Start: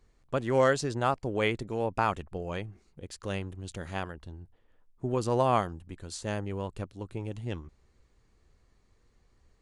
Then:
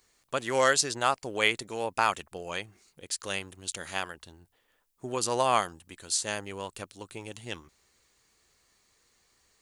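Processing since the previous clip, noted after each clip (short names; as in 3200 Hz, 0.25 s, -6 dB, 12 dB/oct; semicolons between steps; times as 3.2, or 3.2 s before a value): tilt +4 dB/oct; gain +2 dB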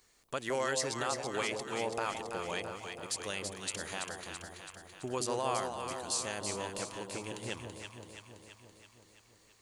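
compressor 1.5:1, threshold -39 dBFS, peak gain reduction 7.5 dB; limiter -22.5 dBFS, peak gain reduction 7.5 dB; echo with dull and thin repeats by turns 0.166 s, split 840 Hz, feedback 78%, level -3.5 dB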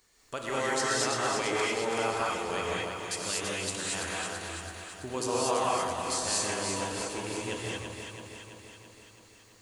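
non-linear reverb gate 0.26 s rising, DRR -5 dB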